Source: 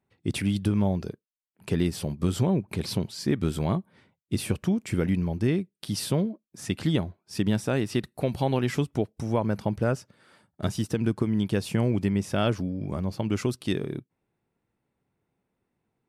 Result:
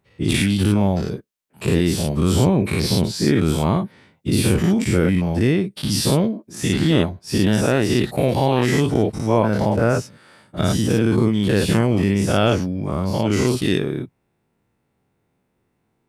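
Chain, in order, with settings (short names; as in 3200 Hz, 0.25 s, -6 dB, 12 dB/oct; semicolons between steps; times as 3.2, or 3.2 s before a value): spectral dilation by 0.12 s; gain +4 dB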